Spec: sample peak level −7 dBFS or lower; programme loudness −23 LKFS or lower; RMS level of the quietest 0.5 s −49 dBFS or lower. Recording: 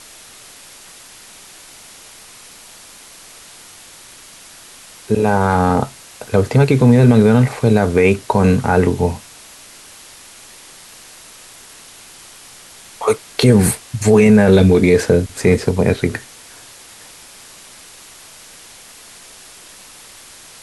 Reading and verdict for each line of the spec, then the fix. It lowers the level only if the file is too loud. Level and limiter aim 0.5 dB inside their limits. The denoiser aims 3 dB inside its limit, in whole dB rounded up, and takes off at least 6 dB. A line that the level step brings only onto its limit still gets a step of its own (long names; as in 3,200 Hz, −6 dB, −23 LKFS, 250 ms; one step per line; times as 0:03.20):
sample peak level −2.0 dBFS: out of spec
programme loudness −14.0 LKFS: out of spec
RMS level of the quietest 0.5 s −41 dBFS: out of spec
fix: level −9.5 dB